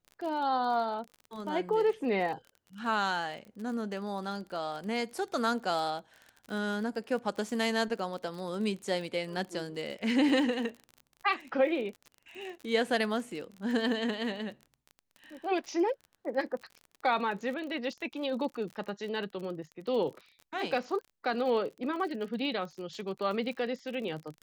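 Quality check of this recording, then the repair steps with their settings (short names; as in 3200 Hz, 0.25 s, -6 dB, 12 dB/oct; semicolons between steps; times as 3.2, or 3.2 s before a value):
crackle 39/s -39 dBFS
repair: de-click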